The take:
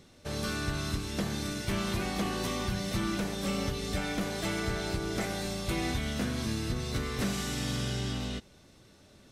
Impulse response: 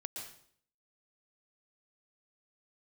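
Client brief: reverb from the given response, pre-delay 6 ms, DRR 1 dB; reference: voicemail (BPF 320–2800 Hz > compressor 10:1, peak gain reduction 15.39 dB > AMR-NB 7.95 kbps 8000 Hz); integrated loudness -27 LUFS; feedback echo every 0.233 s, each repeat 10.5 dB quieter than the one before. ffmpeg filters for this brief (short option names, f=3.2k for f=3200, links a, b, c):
-filter_complex "[0:a]aecho=1:1:233|466|699:0.299|0.0896|0.0269,asplit=2[a][b];[1:a]atrim=start_sample=2205,adelay=6[c];[b][c]afir=irnorm=-1:irlink=0,volume=0.5dB[d];[a][d]amix=inputs=2:normalize=0,highpass=320,lowpass=2.8k,acompressor=threshold=-43dB:ratio=10,volume=21dB" -ar 8000 -c:a libopencore_amrnb -b:a 7950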